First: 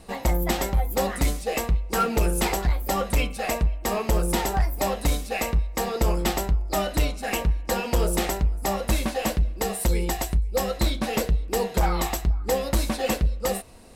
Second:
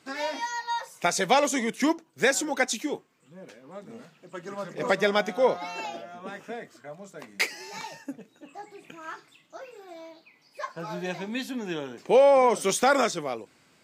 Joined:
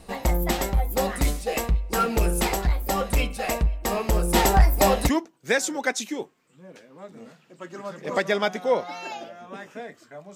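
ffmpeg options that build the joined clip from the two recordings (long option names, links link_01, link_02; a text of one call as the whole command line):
ffmpeg -i cue0.wav -i cue1.wav -filter_complex "[0:a]asplit=3[link_01][link_02][link_03];[link_01]afade=type=out:start_time=4.34:duration=0.02[link_04];[link_02]acontrast=70,afade=type=in:start_time=4.34:duration=0.02,afade=type=out:start_time=5.1:duration=0.02[link_05];[link_03]afade=type=in:start_time=5.1:duration=0.02[link_06];[link_04][link_05][link_06]amix=inputs=3:normalize=0,apad=whole_dur=10.35,atrim=end=10.35,atrim=end=5.1,asetpts=PTS-STARTPTS[link_07];[1:a]atrim=start=1.77:end=7.08,asetpts=PTS-STARTPTS[link_08];[link_07][link_08]acrossfade=duration=0.06:curve1=tri:curve2=tri" out.wav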